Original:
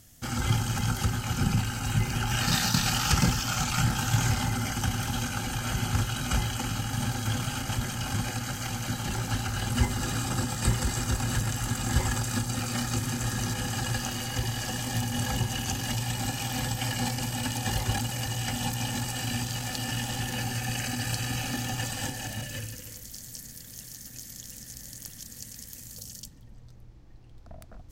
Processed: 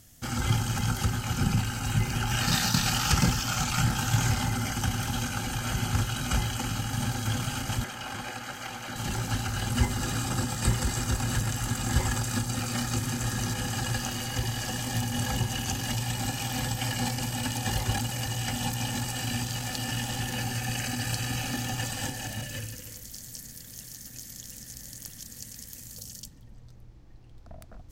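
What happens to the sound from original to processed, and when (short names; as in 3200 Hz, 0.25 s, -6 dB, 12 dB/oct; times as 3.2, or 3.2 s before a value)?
7.84–8.96 tone controls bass -14 dB, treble -8 dB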